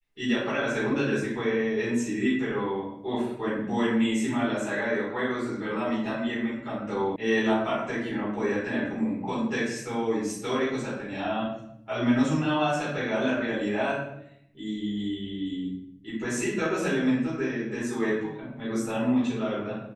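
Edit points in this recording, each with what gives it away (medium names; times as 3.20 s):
7.16 s: sound stops dead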